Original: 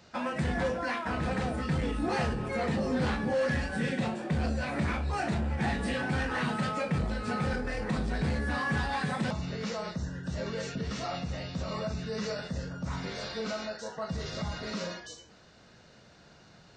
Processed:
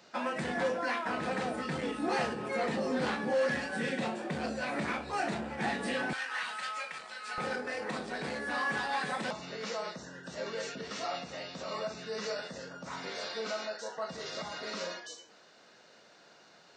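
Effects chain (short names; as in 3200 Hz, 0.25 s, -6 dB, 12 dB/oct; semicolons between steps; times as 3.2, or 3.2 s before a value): HPF 260 Hz 12 dB/oct, from 6.13 s 1300 Hz, from 7.38 s 360 Hz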